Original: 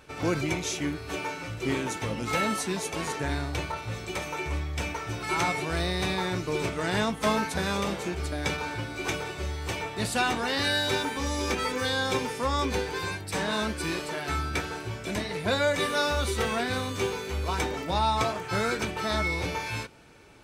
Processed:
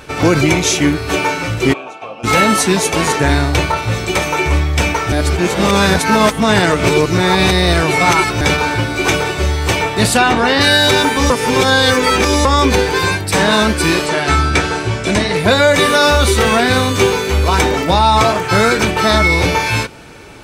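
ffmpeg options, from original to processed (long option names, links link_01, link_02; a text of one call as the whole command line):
ffmpeg -i in.wav -filter_complex "[0:a]asplit=3[link_01][link_02][link_03];[link_01]afade=type=out:start_time=1.72:duration=0.02[link_04];[link_02]asplit=3[link_05][link_06][link_07];[link_05]bandpass=frequency=730:width_type=q:width=8,volume=0dB[link_08];[link_06]bandpass=frequency=1090:width_type=q:width=8,volume=-6dB[link_09];[link_07]bandpass=frequency=2440:width_type=q:width=8,volume=-9dB[link_10];[link_08][link_09][link_10]amix=inputs=3:normalize=0,afade=type=in:start_time=1.72:duration=0.02,afade=type=out:start_time=2.23:duration=0.02[link_11];[link_03]afade=type=in:start_time=2.23:duration=0.02[link_12];[link_04][link_11][link_12]amix=inputs=3:normalize=0,asettb=1/sr,asplit=3[link_13][link_14][link_15];[link_13]atrim=end=10.174[link_16];[link_14]atrim=start=10.17:end=10.61,asetpts=PTS-STARTPTS,afade=type=in:duration=0.004:curve=qsin,afade=type=out:start_time=0.436:duration=0.004:curve=qsin,lowpass=frequency=3100:poles=1[link_17];[link_15]atrim=start=10.606[link_18];[link_16][link_17]acrossfade=duration=0.004:curve1=hsin:curve2=qsin[link_19];[link_19][link_18]acrossfade=duration=0.004:curve1=qsin:curve2=hsin,asettb=1/sr,asplit=3[link_20][link_21][link_22];[link_20]atrim=end=14.064[link_23];[link_21]atrim=start=14.06:end=15.36,asetpts=PTS-STARTPTS,afade=type=in:duration=0.004:curve=qsin,afade=type=out:start_time=1.296:duration=0.004:curve=qsin,lowpass=frequency=10000:width=0.5412,lowpass=frequency=10000:width=1.3066[link_24];[link_22]atrim=start=15.356[link_25];[link_23][link_24]acrossfade=duration=0.004:curve1=hsin:curve2=qsin[link_26];[link_26][link_25]acrossfade=duration=0.004:curve1=qsin:curve2=hsin,asplit=5[link_27][link_28][link_29][link_30][link_31];[link_27]atrim=end=5.122[link_32];[link_28]atrim=start=5.118:end=8.412,asetpts=PTS-STARTPTS,areverse[link_33];[link_29]atrim=start=8.408:end=11.302[link_34];[link_30]atrim=start=11.298:end=12.452,asetpts=PTS-STARTPTS,areverse[link_35];[link_31]atrim=start=12.448[link_36];[link_32][link_33]acrossfade=duration=0.004:curve1=hsin:curve2=hsin[link_37];[link_37][link_34]acrossfade=duration=0.004:curve1=hsin:curve2=hsin[link_38];[link_38][link_35]acrossfade=duration=0.004:curve1=hsin:curve2=hsin[link_39];[link_39][link_36]acrossfade=duration=0.004:curve1=hsin:curve2=hsin,alimiter=level_in=18dB:limit=-1dB:release=50:level=0:latency=1,volume=-1dB" out.wav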